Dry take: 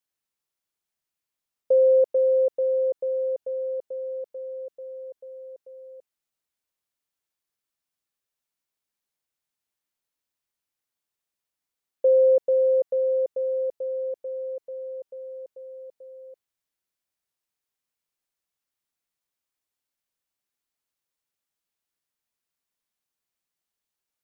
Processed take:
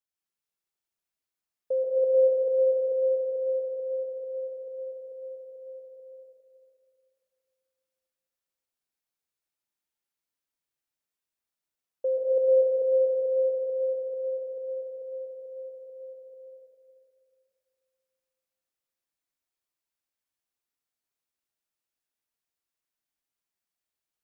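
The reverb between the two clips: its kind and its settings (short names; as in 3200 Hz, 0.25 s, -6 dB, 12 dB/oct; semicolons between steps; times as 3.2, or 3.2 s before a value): plate-style reverb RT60 2.6 s, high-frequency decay 0.8×, pre-delay 0.11 s, DRR -4 dB; gain -8.5 dB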